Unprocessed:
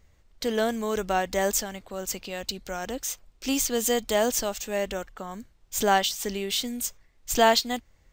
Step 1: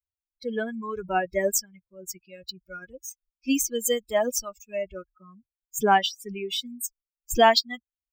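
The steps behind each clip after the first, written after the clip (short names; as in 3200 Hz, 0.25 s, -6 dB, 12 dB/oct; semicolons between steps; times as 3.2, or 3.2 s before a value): per-bin expansion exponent 3; gain +5.5 dB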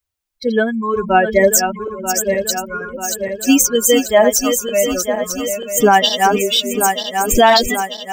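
regenerating reverse delay 0.469 s, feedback 74%, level -8 dB; maximiser +14.5 dB; gain -1 dB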